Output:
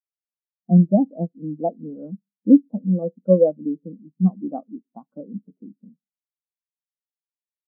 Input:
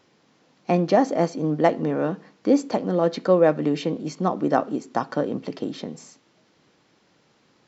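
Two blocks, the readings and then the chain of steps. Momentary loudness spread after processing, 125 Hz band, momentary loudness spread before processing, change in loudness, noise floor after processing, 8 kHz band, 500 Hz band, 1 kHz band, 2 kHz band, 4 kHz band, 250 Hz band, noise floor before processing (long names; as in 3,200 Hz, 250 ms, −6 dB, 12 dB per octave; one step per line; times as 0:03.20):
20 LU, +6.0 dB, 12 LU, +3.0 dB, below −85 dBFS, can't be measured, −2.0 dB, −11.0 dB, below −40 dB, below −40 dB, +4.0 dB, −63 dBFS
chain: low-pass filter 1,500 Hz 24 dB per octave
parametric band 200 Hz +10 dB 0.49 octaves
every bin expanded away from the loudest bin 2.5 to 1
level +1.5 dB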